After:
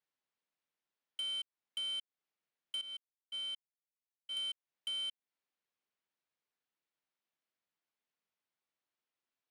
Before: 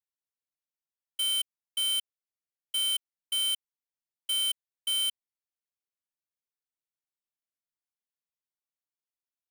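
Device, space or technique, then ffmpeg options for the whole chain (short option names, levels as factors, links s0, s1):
AM radio: -filter_complex "[0:a]asettb=1/sr,asplit=3[s0][s1][s2];[s0]atrim=end=2.814[s3];[s1]atrim=start=2.81:end=4.37,asetpts=PTS-STARTPTS,afade=t=in:d=0.004:c=qsin,afade=t=out:st=1.556:d=0.004:c=qsin,agate=range=0.126:threshold=0.0398:ratio=16:detection=peak[s4];[s2]atrim=start=4.366[s5];[s3][s4]acrossfade=d=0.004:c1=hsin:c2=qsin[s6];[s6][s5]acrossfade=d=0.004:c1=qsin:c2=hsin,highpass=160,lowpass=3600,acompressor=threshold=0.00708:ratio=6,asoftclip=type=tanh:threshold=0.0106,volume=2.11"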